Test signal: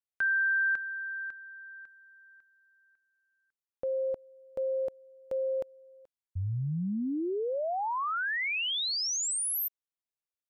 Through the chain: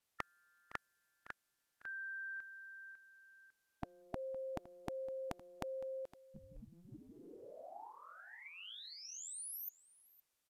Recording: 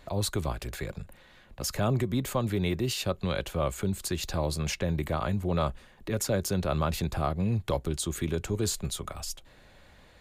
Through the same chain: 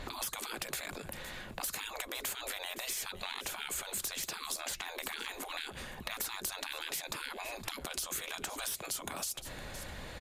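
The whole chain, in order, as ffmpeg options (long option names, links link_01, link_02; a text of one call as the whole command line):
ffmpeg -i in.wav -filter_complex "[0:a]afftfilt=real='re*lt(hypot(re,im),0.0282)':imag='im*lt(hypot(re,im),0.0282)':win_size=1024:overlap=0.75,aresample=32000,aresample=44100,asplit=2[link_01][link_02];[link_02]asoftclip=type=tanh:threshold=-36.5dB,volume=-4dB[link_03];[link_01][link_03]amix=inputs=2:normalize=0,aecho=1:1:512:0.106,acompressor=threshold=-45dB:ratio=12:attack=15:release=222:knee=6:detection=peak,adynamicequalizer=threshold=0.001:dfrequency=6100:dqfactor=0.7:tfrequency=6100:tqfactor=0.7:attack=5:release=100:ratio=0.45:range=2:mode=boostabove:tftype=highshelf,volume=7.5dB" out.wav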